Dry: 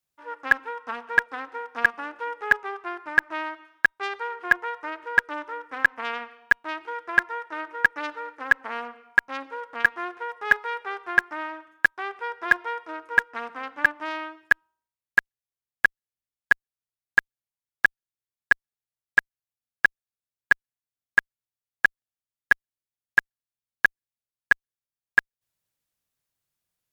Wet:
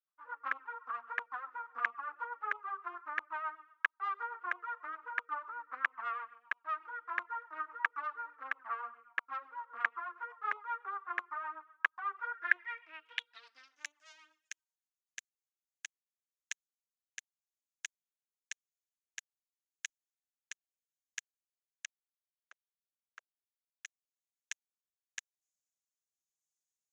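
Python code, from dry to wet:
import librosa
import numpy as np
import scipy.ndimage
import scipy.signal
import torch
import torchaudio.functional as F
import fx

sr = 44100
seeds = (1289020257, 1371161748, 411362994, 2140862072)

y = fx.env_flanger(x, sr, rest_ms=6.5, full_db=-17.0)
y = fx.high_shelf(y, sr, hz=4800.0, db=-11.0, at=(10.63, 11.18))
y = fx.auto_wah(y, sr, base_hz=580.0, top_hz=2200.0, q=2.3, full_db=-28.0, direction='down', at=(21.85, 23.85))
y = fx.rotary_switch(y, sr, hz=8.0, then_hz=0.9, switch_at_s=14.97)
y = fx.filter_sweep_bandpass(y, sr, from_hz=1200.0, to_hz=6700.0, start_s=12.17, end_s=13.86, q=5.4)
y = F.gain(torch.from_numpy(y), 6.0).numpy()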